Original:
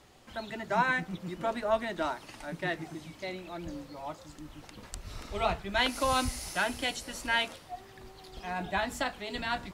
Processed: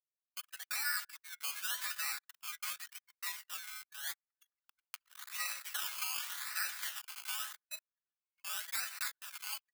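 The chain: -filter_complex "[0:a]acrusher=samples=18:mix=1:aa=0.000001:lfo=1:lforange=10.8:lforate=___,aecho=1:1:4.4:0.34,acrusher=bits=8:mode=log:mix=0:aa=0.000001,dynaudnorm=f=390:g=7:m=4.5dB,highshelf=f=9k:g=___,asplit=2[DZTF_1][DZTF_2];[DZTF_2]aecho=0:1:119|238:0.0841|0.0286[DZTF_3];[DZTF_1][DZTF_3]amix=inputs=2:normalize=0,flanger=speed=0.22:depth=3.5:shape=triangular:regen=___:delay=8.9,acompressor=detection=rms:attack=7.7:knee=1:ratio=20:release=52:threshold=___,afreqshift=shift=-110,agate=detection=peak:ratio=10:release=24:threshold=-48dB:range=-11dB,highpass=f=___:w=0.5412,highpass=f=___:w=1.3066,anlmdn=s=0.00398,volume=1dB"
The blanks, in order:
0.87, 10.5, 63, -30dB, 1.4k, 1.4k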